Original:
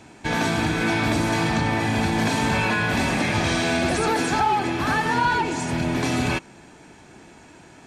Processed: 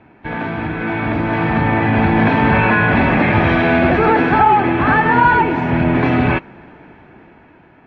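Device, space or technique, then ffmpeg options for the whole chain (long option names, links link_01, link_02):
action camera in a waterproof case: -af "lowpass=frequency=2400:width=0.5412,lowpass=frequency=2400:width=1.3066,dynaudnorm=framelen=420:gausssize=7:maxgain=12dB" -ar 48000 -c:a aac -b:a 48k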